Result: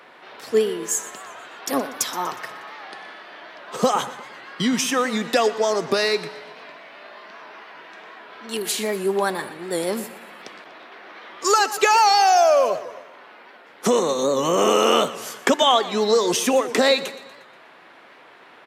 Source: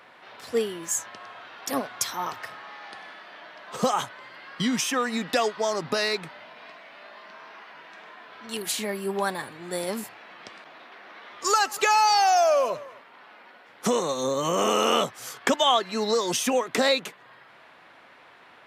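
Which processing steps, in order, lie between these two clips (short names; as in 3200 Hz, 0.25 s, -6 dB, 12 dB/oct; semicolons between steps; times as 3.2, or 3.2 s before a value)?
HPF 140 Hz 12 dB/oct; bell 380 Hz +4.5 dB 0.79 oct; feedback echo 0.12 s, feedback 51%, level -16.5 dB; on a send at -23 dB: reverb RT60 0.80 s, pre-delay 58 ms; on the sum: record warp 78 rpm, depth 100 cents; gain +3.5 dB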